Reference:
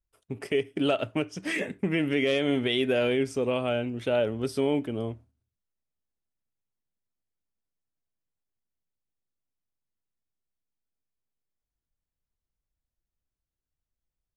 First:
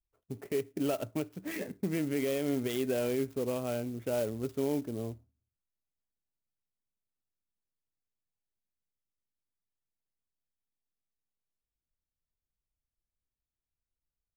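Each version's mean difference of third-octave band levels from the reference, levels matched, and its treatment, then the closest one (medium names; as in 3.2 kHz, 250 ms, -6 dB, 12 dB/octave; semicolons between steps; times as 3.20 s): 6.5 dB: local Wiener filter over 9 samples; tilt shelf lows +3.5 dB; sampling jitter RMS 0.046 ms; trim -8 dB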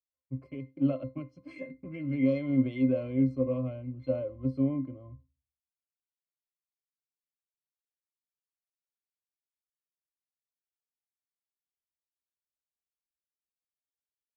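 10.5 dB: peaking EQ 2 kHz -6.5 dB 0.26 oct; pitch-class resonator C, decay 0.2 s; three bands expanded up and down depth 70%; trim +7.5 dB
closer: first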